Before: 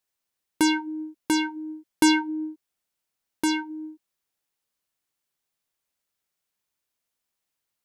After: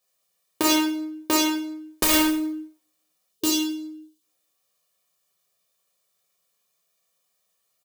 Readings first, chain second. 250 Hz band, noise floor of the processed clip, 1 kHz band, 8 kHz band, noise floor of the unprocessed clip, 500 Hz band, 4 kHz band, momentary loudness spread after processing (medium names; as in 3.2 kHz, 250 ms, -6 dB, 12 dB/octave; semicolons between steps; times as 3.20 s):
+0.5 dB, -74 dBFS, +0.5 dB, +7.0 dB, -83 dBFS, +5.0 dB, +5.5 dB, 16 LU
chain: tracing distortion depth 0.11 ms; high-pass 180 Hz 12 dB/octave; dynamic bell 360 Hz, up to +5 dB, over -35 dBFS, Q 1.3; time-frequency box 3.29–4.22 s, 440–2600 Hz -12 dB; peaking EQ 1.9 kHz -4.5 dB 1.1 oct; integer overflow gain 6.5 dB; comb 1.7 ms, depth 71%; plate-style reverb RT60 0.58 s, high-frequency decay 0.9×, DRR -2.5 dB; loudness maximiser +11 dB; trim -7 dB